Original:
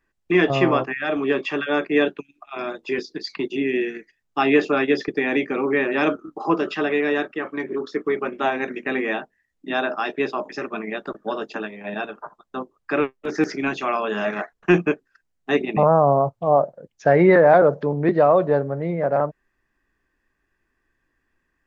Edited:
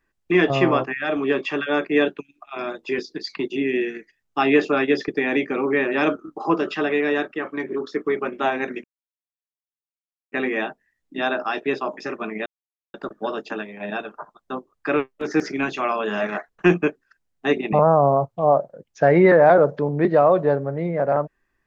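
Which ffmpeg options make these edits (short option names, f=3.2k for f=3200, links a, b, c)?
-filter_complex "[0:a]asplit=3[a][b][c];[a]atrim=end=8.84,asetpts=PTS-STARTPTS,afade=t=out:st=8.836:d=0.004:c=hsin,apad=pad_dur=1.48[d];[b]atrim=start=8.84:end=10.98,asetpts=PTS-STARTPTS,afade=t=in:d=0.004:c=hsin,afade=t=out:st=2.136:d=0.004:c=hsin,apad=pad_dur=0.48[e];[c]atrim=start=10.98,asetpts=PTS-STARTPTS,afade=t=in:d=0.004:c=hsin[f];[d][e][f]concat=n=3:v=0:a=1"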